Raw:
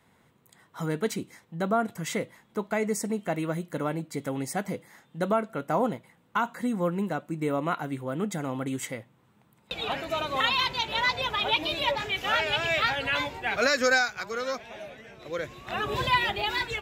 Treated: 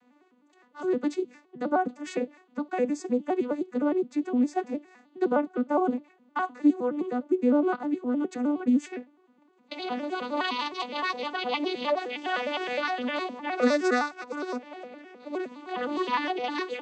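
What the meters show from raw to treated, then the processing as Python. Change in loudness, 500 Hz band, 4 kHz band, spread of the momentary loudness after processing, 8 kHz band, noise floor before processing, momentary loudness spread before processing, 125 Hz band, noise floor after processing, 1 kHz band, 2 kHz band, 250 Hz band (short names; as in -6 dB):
-0.5 dB, +1.5 dB, -8.0 dB, 11 LU, n/a, -64 dBFS, 12 LU, under -15 dB, -63 dBFS, -1.0 dB, -6.0 dB, +5.5 dB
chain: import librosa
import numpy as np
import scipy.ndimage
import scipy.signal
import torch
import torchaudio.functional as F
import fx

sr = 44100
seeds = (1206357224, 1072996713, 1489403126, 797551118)

y = fx.vocoder_arp(x, sr, chord='minor triad', root=59, every_ms=103)
y = fx.dynamic_eq(y, sr, hz=1700.0, q=0.7, threshold_db=-42.0, ratio=4.0, max_db=-4)
y = y * 10.0 ** (2.5 / 20.0)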